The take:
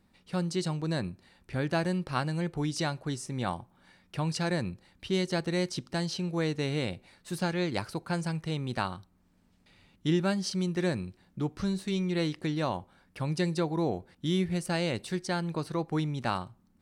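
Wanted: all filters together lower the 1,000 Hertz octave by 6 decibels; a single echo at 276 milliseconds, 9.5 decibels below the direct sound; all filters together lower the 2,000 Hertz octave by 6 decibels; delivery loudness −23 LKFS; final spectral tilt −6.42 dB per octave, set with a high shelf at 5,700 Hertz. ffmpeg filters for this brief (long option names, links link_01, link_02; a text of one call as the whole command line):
ffmpeg -i in.wav -af "equalizer=frequency=1000:width_type=o:gain=-7,equalizer=frequency=2000:width_type=o:gain=-4.5,highshelf=frequency=5700:gain=-6.5,aecho=1:1:276:0.335,volume=9.5dB" out.wav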